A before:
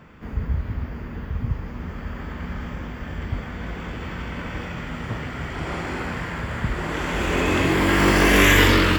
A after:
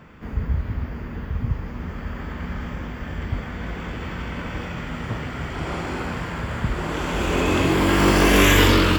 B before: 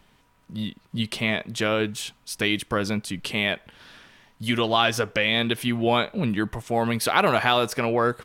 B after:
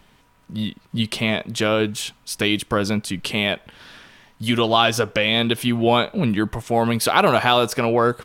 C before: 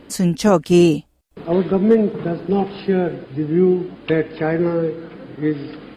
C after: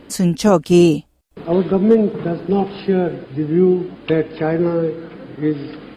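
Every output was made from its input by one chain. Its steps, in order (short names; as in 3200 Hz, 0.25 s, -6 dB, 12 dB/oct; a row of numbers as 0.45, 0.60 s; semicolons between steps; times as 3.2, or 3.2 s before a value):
dynamic EQ 1900 Hz, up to -6 dB, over -39 dBFS, Q 2.8; normalise peaks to -2 dBFS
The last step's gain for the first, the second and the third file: +1.0, +4.5, +1.5 dB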